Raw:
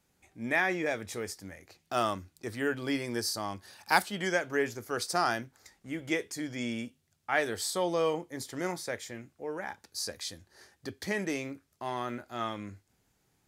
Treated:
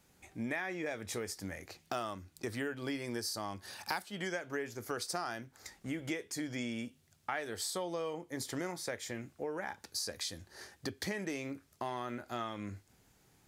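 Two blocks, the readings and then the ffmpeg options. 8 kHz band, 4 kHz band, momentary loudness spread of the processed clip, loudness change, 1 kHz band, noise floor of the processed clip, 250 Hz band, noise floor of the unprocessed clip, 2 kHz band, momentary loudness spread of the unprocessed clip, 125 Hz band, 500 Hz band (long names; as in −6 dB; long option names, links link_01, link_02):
−3.0 dB, −4.0 dB, 8 LU, −6.5 dB, −8.0 dB, −69 dBFS, −4.5 dB, −74 dBFS, −8.0 dB, 15 LU, −3.0 dB, −7.0 dB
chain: -af "acompressor=threshold=-41dB:ratio=6,volume=5.5dB"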